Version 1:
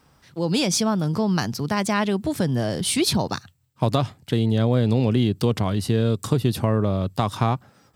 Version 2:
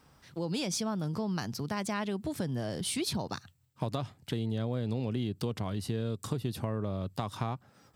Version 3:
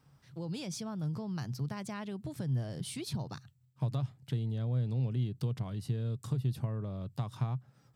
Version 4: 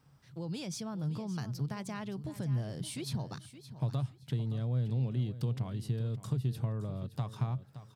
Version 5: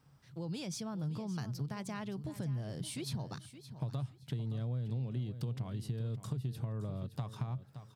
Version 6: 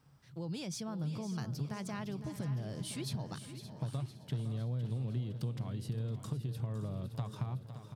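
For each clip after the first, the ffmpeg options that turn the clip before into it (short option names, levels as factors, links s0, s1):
-af "acompressor=threshold=0.0224:ratio=2,volume=0.668"
-af "equalizer=f=130:w=2.4:g=15,volume=0.376"
-af "aecho=1:1:569|1138|1707:0.211|0.0465|0.0102"
-af "acompressor=threshold=0.0251:ratio=6,volume=0.891"
-af "aecho=1:1:509|1018|1527|2036|2545|3054:0.266|0.152|0.0864|0.0493|0.0281|0.016"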